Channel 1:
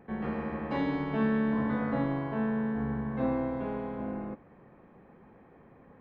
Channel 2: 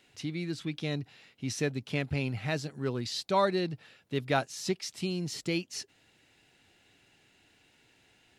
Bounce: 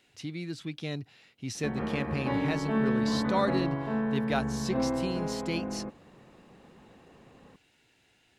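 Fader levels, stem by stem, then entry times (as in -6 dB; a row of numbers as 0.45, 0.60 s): +0.5, -2.0 dB; 1.55, 0.00 s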